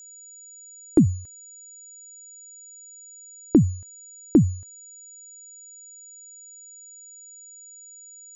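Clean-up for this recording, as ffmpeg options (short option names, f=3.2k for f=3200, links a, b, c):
-af "bandreject=f=6.9k:w=30"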